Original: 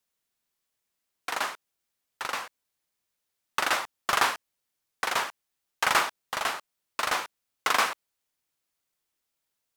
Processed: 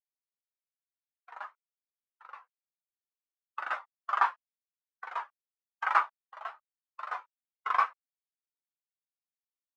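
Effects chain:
0:05.94–0:07.15: Butterworth high-pass 270 Hz
every bin expanded away from the loudest bin 2.5 to 1

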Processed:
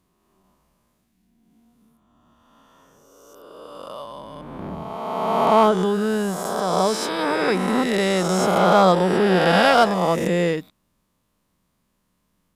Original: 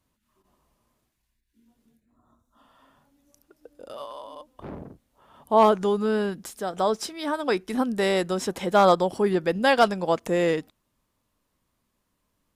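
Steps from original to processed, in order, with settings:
peak hold with a rise ahead of every peak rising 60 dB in 2.12 s
parametric band 180 Hz +8 dB 0.4 octaves

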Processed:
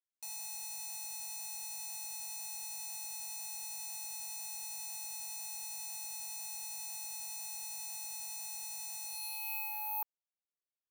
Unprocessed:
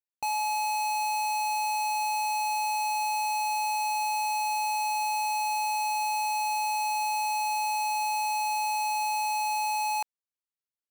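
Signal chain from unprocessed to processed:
band-pass filter sweep 6,200 Hz → 490 Hz, 0:09.03–0:10.53
bad sample-rate conversion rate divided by 3×, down none, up zero stuff
level −5 dB

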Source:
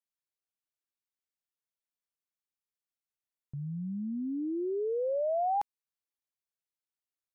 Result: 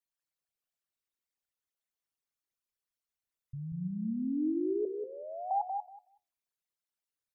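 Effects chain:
spectral envelope exaggerated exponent 3
0:04.85–0:05.51: high-pass filter 1,200 Hz 12 dB per octave
flanger 1.1 Hz, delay 8.7 ms, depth 5.1 ms, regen +78%
repeating echo 187 ms, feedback 15%, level −5 dB
level +4 dB

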